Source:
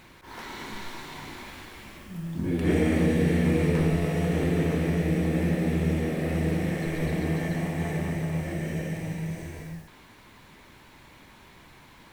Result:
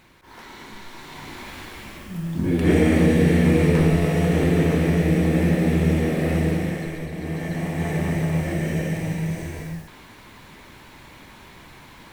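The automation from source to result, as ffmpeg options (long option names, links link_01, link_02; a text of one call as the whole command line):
ffmpeg -i in.wav -af "volume=17.5dB,afade=type=in:start_time=0.88:duration=0.79:silence=0.375837,afade=type=out:start_time=6.32:duration=0.78:silence=0.281838,afade=type=in:start_time=7.1:duration=1.08:silence=0.266073" out.wav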